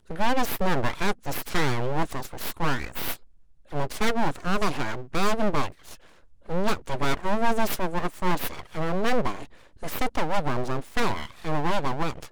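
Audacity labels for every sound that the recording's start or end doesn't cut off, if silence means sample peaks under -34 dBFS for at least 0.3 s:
3.720000	5.940000	sound
6.490000	9.450000	sound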